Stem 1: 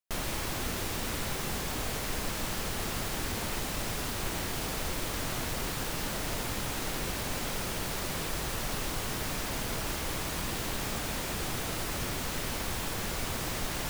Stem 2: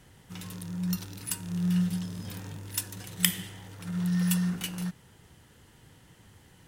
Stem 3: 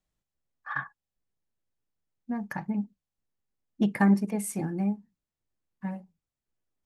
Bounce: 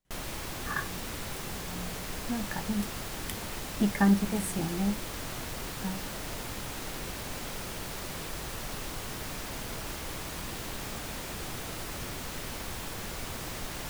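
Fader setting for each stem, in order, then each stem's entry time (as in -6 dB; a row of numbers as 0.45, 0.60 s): -4.0, -17.0, -1.5 dB; 0.00, 0.05, 0.00 s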